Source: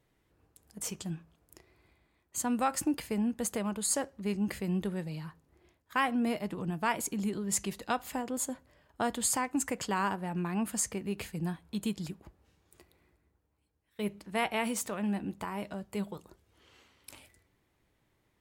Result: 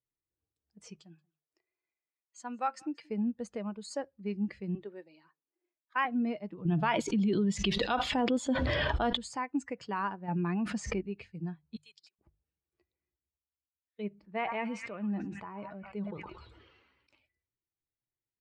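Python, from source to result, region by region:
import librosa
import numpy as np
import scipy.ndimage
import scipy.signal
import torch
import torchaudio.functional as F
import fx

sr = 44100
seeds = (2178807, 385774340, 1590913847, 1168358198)

y = fx.chain(x, sr, fx.highpass(hz=480.0, slope=6),
    fx.echo_single(ms=180, db=-19.0), at=(1.0, 3.1))
y = fx.chain(y, sr, fx.highpass(hz=270.0, slope=24),
    fx.notch(hz=470.0, q=15.0), at=(4.75, 6.05))
y = fx.chain(y, sr, fx.peak_eq(hz=3400.0, db=9.5, octaves=0.36),
    fx.env_flatten(amount_pct=100), at=(6.65, 9.17))
y = fx.chain(y, sr, fx.median_filter(points=3),
    fx.highpass(hz=46.0, slope=12),
    fx.env_flatten(amount_pct=100), at=(10.28, 11.01))
y = fx.chain(y, sr, fx.highpass(hz=550.0, slope=12),
    fx.tilt_eq(slope=3.5),
    fx.level_steps(step_db=22), at=(11.76, 12.19))
y = fx.chain(y, sr, fx.high_shelf(hz=2900.0, db=-5.5),
    fx.echo_stepped(ms=113, hz=1200.0, octaves=0.7, feedback_pct=70, wet_db=-7.0),
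    fx.sustainer(db_per_s=25.0), at=(14.09, 17.1))
y = fx.bin_expand(y, sr, power=1.5)
y = scipy.signal.sosfilt(scipy.signal.bessel(4, 3700.0, 'lowpass', norm='mag', fs=sr, output='sos'), y)
y = fx.hum_notches(y, sr, base_hz=50, count=3)
y = y * 10.0 ** (1.0 / 20.0)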